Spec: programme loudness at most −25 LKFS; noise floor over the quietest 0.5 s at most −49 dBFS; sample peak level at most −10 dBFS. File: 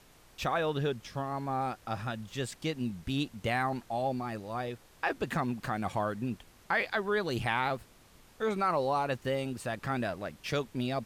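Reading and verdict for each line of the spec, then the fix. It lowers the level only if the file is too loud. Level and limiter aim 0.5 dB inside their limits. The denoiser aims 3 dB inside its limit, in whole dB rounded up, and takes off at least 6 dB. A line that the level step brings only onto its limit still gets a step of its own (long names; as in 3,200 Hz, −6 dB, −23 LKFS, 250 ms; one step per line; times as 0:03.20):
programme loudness −33.5 LKFS: in spec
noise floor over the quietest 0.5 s −58 dBFS: in spec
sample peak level −16.0 dBFS: in spec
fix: no processing needed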